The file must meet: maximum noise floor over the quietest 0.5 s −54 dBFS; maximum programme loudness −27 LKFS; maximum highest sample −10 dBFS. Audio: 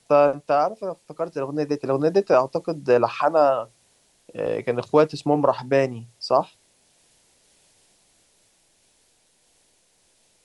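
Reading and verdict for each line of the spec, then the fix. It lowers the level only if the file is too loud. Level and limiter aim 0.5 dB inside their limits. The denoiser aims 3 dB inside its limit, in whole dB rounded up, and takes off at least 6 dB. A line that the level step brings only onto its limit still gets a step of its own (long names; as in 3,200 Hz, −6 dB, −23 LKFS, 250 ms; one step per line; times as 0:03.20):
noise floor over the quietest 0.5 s −63 dBFS: in spec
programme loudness −22.0 LKFS: out of spec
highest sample −5.0 dBFS: out of spec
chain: level −5.5 dB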